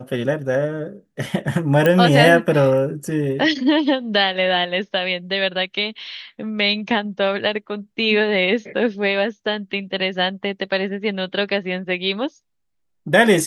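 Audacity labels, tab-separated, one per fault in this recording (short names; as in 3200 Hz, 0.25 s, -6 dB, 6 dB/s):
1.860000	1.860000	pop -6 dBFS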